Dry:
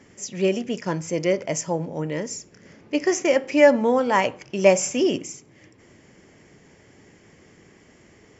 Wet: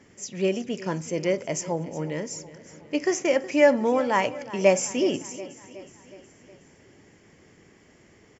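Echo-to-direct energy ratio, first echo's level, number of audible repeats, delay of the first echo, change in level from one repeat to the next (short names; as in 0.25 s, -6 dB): -15.5 dB, -17.0 dB, 4, 0.367 s, -5.0 dB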